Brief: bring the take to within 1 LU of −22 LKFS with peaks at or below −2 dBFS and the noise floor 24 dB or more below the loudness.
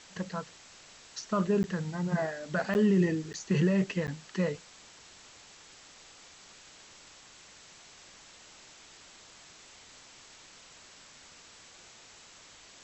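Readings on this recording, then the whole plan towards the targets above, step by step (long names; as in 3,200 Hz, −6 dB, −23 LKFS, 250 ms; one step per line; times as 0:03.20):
number of dropouts 4; longest dropout 9.8 ms; background noise floor −54 dBFS; target noise floor −55 dBFS; integrated loudness −30.5 LKFS; sample peak −16.5 dBFS; target loudness −22.0 LKFS
→ repair the gap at 0:01.63/0:02.74/0:03.33/0:04.07, 9.8 ms
broadband denoise 6 dB, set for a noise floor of −54 dBFS
level +8.5 dB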